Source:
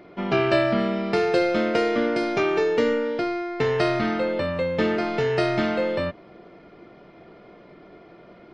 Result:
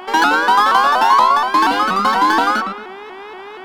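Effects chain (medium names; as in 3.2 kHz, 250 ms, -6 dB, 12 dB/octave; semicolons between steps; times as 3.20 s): median filter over 15 samples; bass shelf 170 Hz +4 dB; speed mistake 33 rpm record played at 78 rpm; mains buzz 400 Hz, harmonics 9, -38 dBFS -6 dB/octave; graphic EQ 125/250/500/1000/4000 Hz -10/+12/-8/+10/+5 dB; filtered feedback delay 112 ms, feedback 32%, low-pass 2.7 kHz, level -4 dB; vibrato with a chosen wave saw up 4.2 Hz, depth 160 cents; trim +1.5 dB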